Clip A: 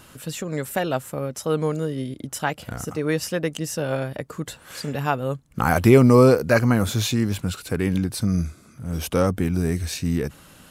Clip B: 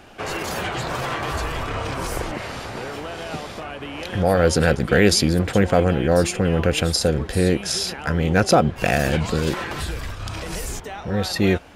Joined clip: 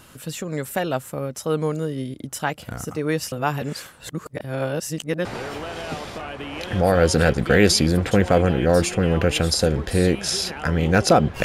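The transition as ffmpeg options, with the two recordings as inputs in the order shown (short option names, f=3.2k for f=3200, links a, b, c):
-filter_complex "[0:a]apad=whole_dur=11.44,atrim=end=11.44,asplit=2[a][b];[a]atrim=end=3.322[c];[b]atrim=start=3.318:end=5.252,asetpts=PTS-STARTPTS,areverse[d];[1:a]atrim=start=2.668:end=8.86[e];[c][d]acrossfade=d=0.004:c1=hsin:c2=hsin[f];[f][e]acrossfade=d=0.004:c1=hsin:c2=hsin"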